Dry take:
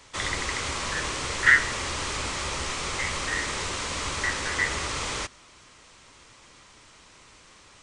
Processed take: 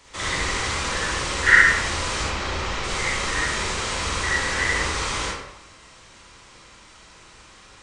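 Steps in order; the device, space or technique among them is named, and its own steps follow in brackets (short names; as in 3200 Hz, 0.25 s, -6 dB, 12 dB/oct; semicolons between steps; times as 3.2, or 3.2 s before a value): 2.23–2.84 air absorption 99 m; bathroom (reverb RT60 0.85 s, pre-delay 37 ms, DRR -5.5 dB); gain -1.5 dB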